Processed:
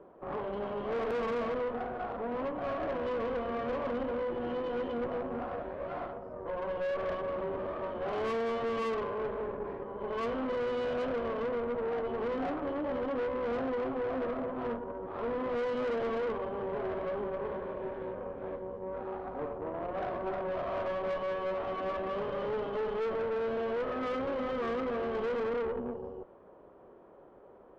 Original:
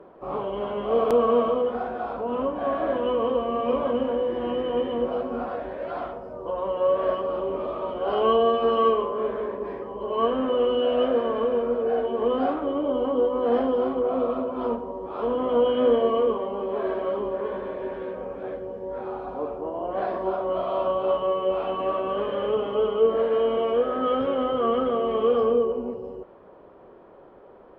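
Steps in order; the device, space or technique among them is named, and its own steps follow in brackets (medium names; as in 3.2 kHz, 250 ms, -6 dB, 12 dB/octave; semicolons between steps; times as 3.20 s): tube preamp driven hard (valve stage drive 28 dB, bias 0.7; treble shelf 3.1 kHz -9 dB); trim -2 dB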